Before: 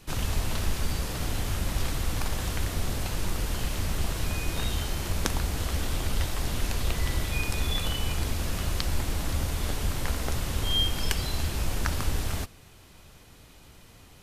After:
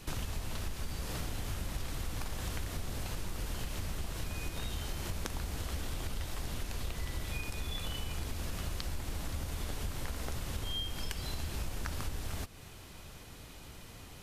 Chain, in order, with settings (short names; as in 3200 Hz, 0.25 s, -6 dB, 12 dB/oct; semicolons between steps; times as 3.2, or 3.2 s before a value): compressor, threshold -36 dBFS, peak gain reduction 15.5 dB; gain +2 dB